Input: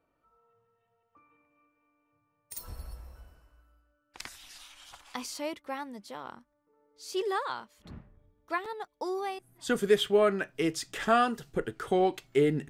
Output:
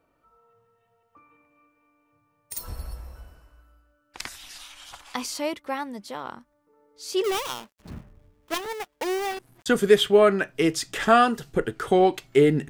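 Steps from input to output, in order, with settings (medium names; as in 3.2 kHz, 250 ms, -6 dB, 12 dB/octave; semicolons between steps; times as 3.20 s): 7.24–9.66 s: dead-time distortion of 0.29 ms; trim +7 dB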